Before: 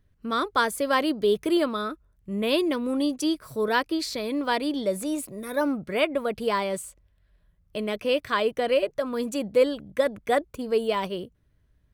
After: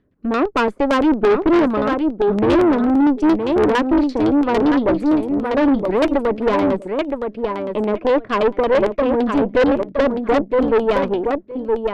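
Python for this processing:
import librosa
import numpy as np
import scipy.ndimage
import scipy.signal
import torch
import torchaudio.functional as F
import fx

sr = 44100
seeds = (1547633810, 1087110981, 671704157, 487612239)

y = fx.peak_eq(x, sr, hz=280.0, db=14.5, octaves=1.8)
y = fx.filter_lfo_lowpass(y, sr, shape='saw_down', hz=8.8, low_hz=560.0, high_hz=3500.0, q=0.99)
y = fx.low_shelf(y, sr, hz=180.0, db=-11.5)
y = fx.echo_feedback(y, sr, ms=967, feedback_pct=15, wet_db=-6.5)
y = fx.tube_stage(y, sr, drive_db=18.0, bias=0.65)
y = F.gain(torch.from_numpy(y), 7.0).numpy()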